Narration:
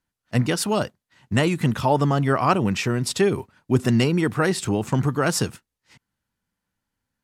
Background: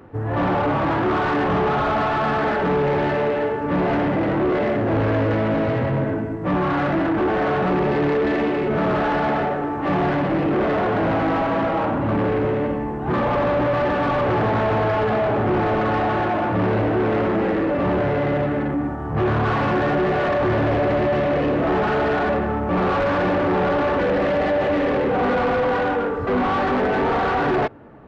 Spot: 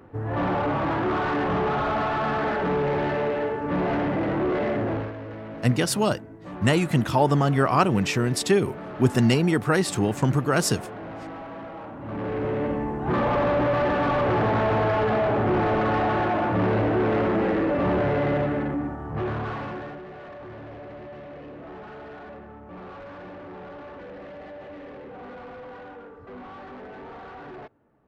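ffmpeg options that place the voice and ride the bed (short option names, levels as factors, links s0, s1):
-filter_complex "[0:a]adelay=5300,volume=0.944[s0];[1:a]volume=3.16,afade=t=out:st=4.83:d=0.3:silence=0.237137,afade=t=in:st=11.98:d=0.82:silence=0.188365,afade=t=out:st=18.32:d=1.7:silence=0.11885[s1];[s0][s1]amix=inputs=2:normalize=0"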